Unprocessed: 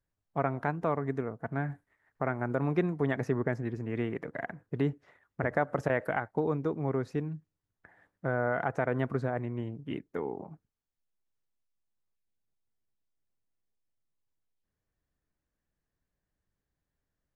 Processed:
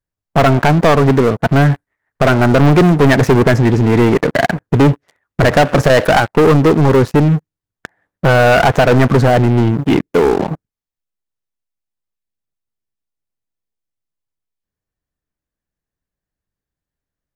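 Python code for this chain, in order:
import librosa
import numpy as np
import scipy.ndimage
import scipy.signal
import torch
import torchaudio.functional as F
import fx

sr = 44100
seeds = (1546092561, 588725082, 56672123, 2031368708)

y = fx.leveller(x, sr, passes=5)
y = y * 10.0 ** (9.0 / 20.0)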